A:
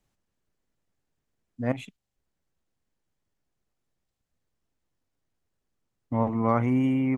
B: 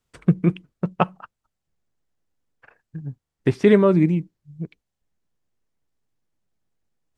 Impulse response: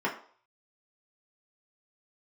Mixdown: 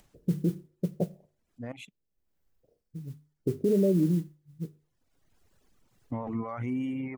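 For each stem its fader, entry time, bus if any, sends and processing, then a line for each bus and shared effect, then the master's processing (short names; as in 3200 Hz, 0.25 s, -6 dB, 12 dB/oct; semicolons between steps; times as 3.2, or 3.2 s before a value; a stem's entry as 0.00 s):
-1.5 dB, 0.00 s, no send, limiter -21 dBFS, peak gain reduction 11 dB; reverb removal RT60 1.7 s; upward compressor, threshold -48 dBFS; auto duck -17 dB, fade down 0.60 s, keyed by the second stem
-6.0 dB, 0.00 s, send -21.5 dB, steep low-pass 580 Hz 48 dB/oct; notches 50/100/150 Hz; modulation noise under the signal 27 dB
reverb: on, RT60 0.50 s, pre-delay 3 ms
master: limiter -17 dBFS, peak gain reduction 6.5 dB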